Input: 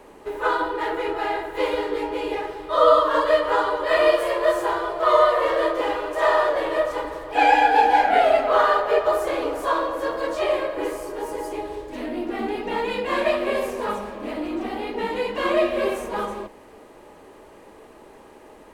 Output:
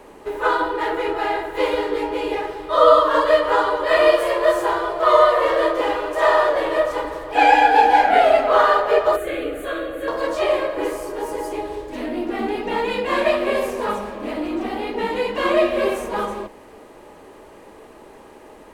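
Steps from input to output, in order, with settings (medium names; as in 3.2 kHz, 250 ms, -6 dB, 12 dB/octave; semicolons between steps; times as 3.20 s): 9.16–10.08 s: static phaser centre 2.3 kHz, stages 4; trim +3 dB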